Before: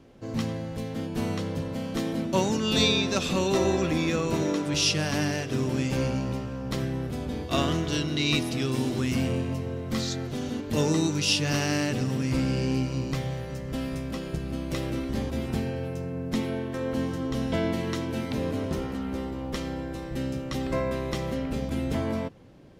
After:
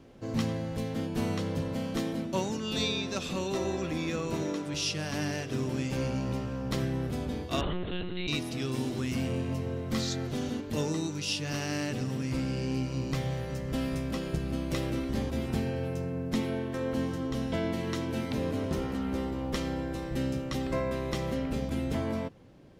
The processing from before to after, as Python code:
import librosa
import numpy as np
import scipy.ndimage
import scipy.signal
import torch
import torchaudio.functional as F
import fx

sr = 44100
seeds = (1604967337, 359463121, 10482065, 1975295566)

y = fx.rider(x, sr, range_db=4, speed_s=0.5)
y = fx.lpc_monotone(y, sr, seeds[0], pitch_hz=180.0, order=10, at=(7.61, 8.28))
y = F.gain(torch.from_numpy(y), -4.0).numpy()